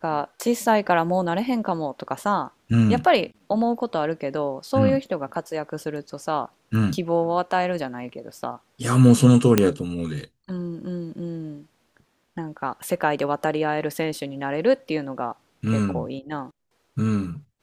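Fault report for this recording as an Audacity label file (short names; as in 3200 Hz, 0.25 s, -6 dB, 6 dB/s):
9.580000	9.580000	pop -2 dBFS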